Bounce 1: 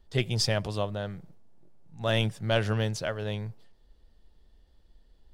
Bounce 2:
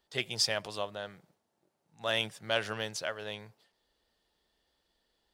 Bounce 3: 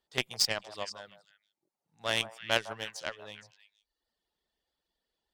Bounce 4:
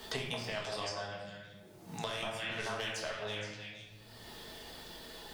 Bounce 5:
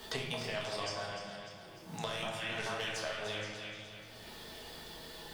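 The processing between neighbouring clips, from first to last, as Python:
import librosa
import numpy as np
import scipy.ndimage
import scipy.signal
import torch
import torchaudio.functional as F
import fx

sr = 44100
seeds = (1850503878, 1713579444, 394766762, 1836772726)

y1 = fx.highpass(x, sr, hz=880.0, slope=6)
y2 = fx.dereverb_blind(y1, sr, rt60_s=0.9)
y2 = fx.cheby_harmonics(y2, sr, harmonics=(3, 5, 7), levels_db=(-14, -37, -29), full_scale_db=-14.0)
y2 = fx.echo_stepped(y2, sr, ms=156, hz=860.0, octaves=1.4, feedback_pct=70, wet_db=-9)
y2 = y2 * 10.0 ** (6.5 / 20.0)
y3 = fx.over_compress(y2, sr, threshold_db=-39.0, ratio=-1.0)
y3 = fx.room_shoebox(y3, sr, seeds[0], volume_m3=210.0, walls='mixed', distance_m=1.5)
y3 = fx.band_squash(y3, sr, depth_pct=100)
y3 = y3 * 10.0 ** (-3.5 / 20.0)
y4 = fx.comb_fb(y3, sr, f0_hz=160.0, decay_s=1.5, harmonics='all', damping=0.0, mix_pct=70)
y4 = fx.echo_feedback(y4, sr, ms=299, feedback_pct=54, wet_db=-9.5)
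y4 = y4 * 10.0 ** (9.5 / 20.0)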